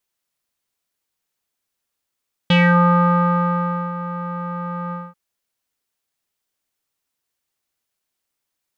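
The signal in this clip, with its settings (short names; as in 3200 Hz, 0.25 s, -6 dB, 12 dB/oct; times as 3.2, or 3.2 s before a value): synth note square F3 12 dB/oct, low-pass 1200 Hz, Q 5.3, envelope 1.5 oct, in 0.27 s, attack 4.1 ms, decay 1.42 s, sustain -15 dB, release 0.22 s, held 2.42 s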